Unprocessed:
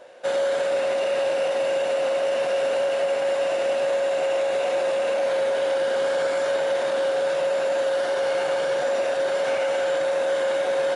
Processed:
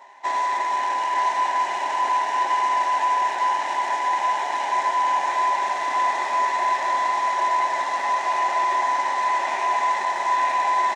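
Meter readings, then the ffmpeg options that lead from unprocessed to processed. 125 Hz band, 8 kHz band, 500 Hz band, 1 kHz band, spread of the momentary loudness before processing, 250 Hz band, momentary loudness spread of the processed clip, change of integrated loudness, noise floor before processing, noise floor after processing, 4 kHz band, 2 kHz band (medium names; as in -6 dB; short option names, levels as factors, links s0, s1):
no reading, +1.5 dB, -14.5 dB, +13.5 dB, 1 LU, -4.5 dB, 3 LU, +1.5 dB, -25 dBFS, -27 dBFS, -1.5 dB, +3.0 dB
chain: -af "afftfilt=real='real(if(between(b,1,1008),(2*floor((b-1)/24)+1)*24-b,b),0)':imag='imag(if(between(b,1,1008),(2*floor((b-1)/24)+1)*24-b,b),0)*if(between(b,1,1008),-1,1)':win_size=2048:overlap=0.75,acrusher=bits=3:mode=log:mix=0:aa=0.000001,highpass=f=320:w=0.5412,highpass=f=320:w=1.3066,equalizer=f=400:t=q:w=4:g=10,equalizer=f=720:t=q:w=4:g=5,equalizer=f=1300:t=q:w=4:g=-9,equalizer=f=1800:t=q:w=4:g=8,equalizer=f=2900:t=q:w=4:g=-6,equalizer=f=4600:t=q:w=4:g=-7,lowpass=f=6800:w=0.5412,lowpass=f=6800:w=1.3066,aecho=1:1:912:0.562"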